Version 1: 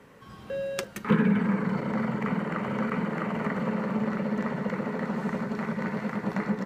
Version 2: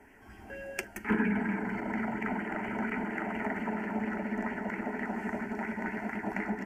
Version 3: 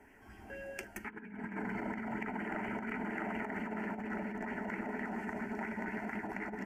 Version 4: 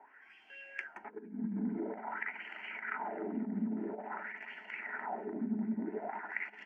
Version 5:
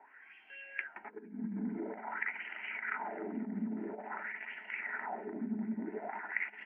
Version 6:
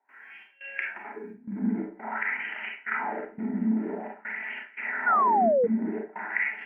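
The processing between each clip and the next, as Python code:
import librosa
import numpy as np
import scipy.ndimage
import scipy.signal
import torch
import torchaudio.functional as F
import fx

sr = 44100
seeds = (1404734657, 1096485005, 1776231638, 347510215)

y1 = fx.low_shelf(x, sr, hz=64.0, db=10.5)
y1 = fx.fixed_phaser(y1, sr, hz=770.0, stages=8)
y1 = fx.bell_lfo(y1, sr, hz=4.3, low_hz=620.0, high_hz=2900.0, db=7)
y1 = F.gain(torch.from_numpy(y1), -1.5).numpy()
y2 = fx.over_compress(y1, sr, threshold_db=-34.0, ratio=-0.5)
y2 = F.gain(torch.from_numpy(y2), -4.5).numpy()
y3 = fx.peak_eq(y2, sr, hz=93.0, db=-10.0, octaves=0.95)
y3 = fx.wah_lfo(y3, sr, hz=0.49, low_hz=210.0, high_hz=3100.0, q=3.9)
y3 = fx.air_absorb(y3, sr, metres=63.0)
y3 = F.gain(torch.from_numpy(y3), 10.0).numpy()
y4 = fx.lowpass_res(y3, sr, hz=2400.0, q=1.8)
y4 = F.gain(torch.from_numpy(y4), -2.0).numpy()
y5 = fx.step_gate(y4, sr, bpm=173, pattern='.xxxx..xxxxxxxx.', floor_db=-24.0, edge_ms=4.5)
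y5 = fx.rev_schroeder(y5, sr, rt60_s=0.34, comb_ms=28, drr_db=-0.5)
y5 = fx.spec_paint(y5, sr, seeds[0], shape='fall', start_s=5.06, length_s=0.61, low_hz=450.0, high_hz=1500.0, level_db=-27.0)
y5 = F.gain(torch.from_numpy(y5), 5.5).numpy()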